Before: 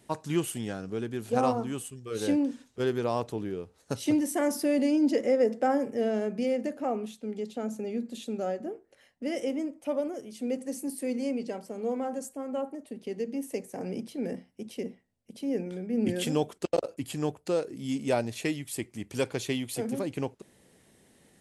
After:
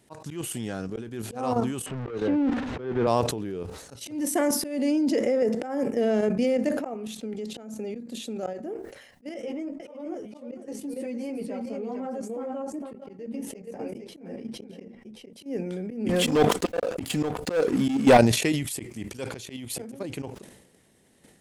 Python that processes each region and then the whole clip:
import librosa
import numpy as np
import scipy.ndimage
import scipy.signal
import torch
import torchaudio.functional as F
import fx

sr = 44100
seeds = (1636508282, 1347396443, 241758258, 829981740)

y = fx.chain(x, sr, fx.zero_step(step_db=-32.5),
    fx.lowpass(hz=2000.0, slope=12),
    fx.band_squash(depth_pct=40), at=(1.86, 3.07))
y = fx.chain(y, sr, fx.lowpass(hz=2500.0, slope=6),
    fx.echo_single(ms=457, db=-6.5),
    fx.ensemble(), at=(9.34, 15.33))
y = fx.chain(y, sr, fx.high_shelf(hz=4800.0, db=-5.5),
    fx.comb(ms=4.1, depth=0.35),
    fx.leveller(passes=3), at=(16.09, 18.18))
y = fx.level_steps(y, sr, step_db=10)
y = fx.auto_swell(y, sr, attack_ms=238.0)
y = fx.sustainer(y, sr, db_per_s=61.0)
y = F.gain(torch.from_numpy(y), 7.5).numpy()